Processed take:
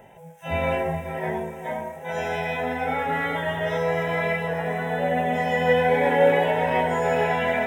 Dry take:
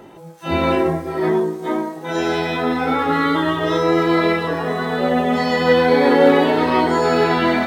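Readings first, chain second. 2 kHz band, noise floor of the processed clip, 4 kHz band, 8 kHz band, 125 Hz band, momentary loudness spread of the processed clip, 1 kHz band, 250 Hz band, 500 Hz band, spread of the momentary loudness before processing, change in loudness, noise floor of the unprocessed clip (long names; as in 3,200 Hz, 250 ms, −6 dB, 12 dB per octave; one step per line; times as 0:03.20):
−3.5 dB, −42 dBFS, −9.5 dB, can't be measured, −4.0 dB, 11 LU, −5.0 dB, −12.5 dB, −5.5 dB, 8 LU, −6.5 dB, −37 dBFS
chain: phaser with its sweep stopped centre 1,200 Hz, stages 6
feedback echo with a low-pass in the loop 421 ms, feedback 53%, low-pass 3,700 Hz, level −12 dB
level −2.5 dB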